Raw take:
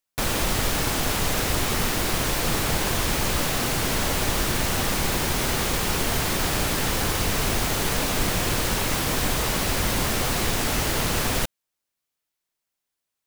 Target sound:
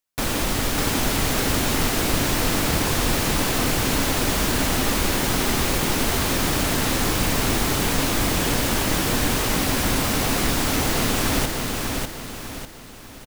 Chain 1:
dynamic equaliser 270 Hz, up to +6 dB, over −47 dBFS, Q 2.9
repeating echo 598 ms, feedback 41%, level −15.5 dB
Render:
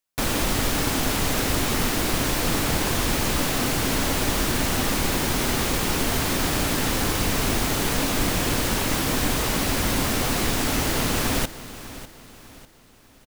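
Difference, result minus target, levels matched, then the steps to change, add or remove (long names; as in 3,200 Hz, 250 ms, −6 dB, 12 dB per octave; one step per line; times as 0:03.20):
echo-to-direct −12 dB
change: repeating echo 598 ms, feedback 41%, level −3.5 dB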